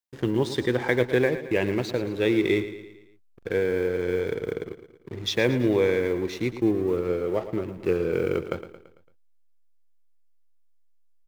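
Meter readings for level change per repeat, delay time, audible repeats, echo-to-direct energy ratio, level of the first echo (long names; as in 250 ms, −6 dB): −6.0 dB, 112 ms, 4, −11.0 dB, −12.5 dB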